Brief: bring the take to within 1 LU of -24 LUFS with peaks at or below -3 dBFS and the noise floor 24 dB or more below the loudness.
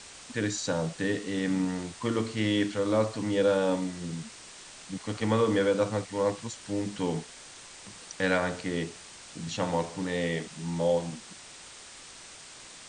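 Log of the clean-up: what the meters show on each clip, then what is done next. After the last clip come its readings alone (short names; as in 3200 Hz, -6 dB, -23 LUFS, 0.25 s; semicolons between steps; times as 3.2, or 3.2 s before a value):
noise floor -48 dBFS; noise floor target -54 dBFS; loudness -29.5 LUFS; peak -10.5 dBFS; loudness target -24.0 LUFS
-> noise print and reduce 6 dB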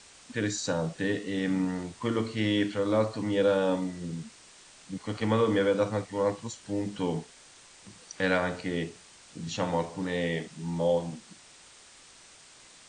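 noise floor -54 dBFS; loudness -29.5 LUFS; peak -10.5 dBFS; loudness target -24.0 LUFS
-> gain +5.5 dB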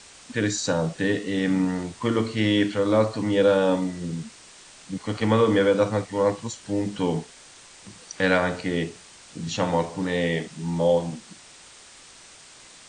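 loudness -24.0 LUFS; peak -5.0 dBFS; noise floor -49 dBFS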